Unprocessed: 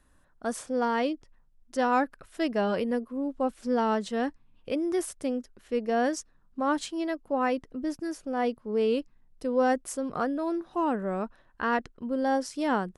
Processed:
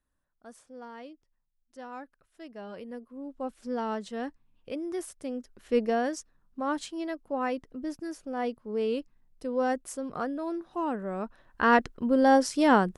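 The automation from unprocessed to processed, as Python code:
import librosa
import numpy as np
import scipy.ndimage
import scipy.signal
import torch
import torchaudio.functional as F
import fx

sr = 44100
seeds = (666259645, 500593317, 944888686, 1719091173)

y = fx.gain(x, sr, db=fx.line((2.43, -17.5), (3.55, -6.0), (5.27, -6.0), (5.8, 4.5), (6.03, -3.5), (11.14, -3.5), (11.7, 6.0)))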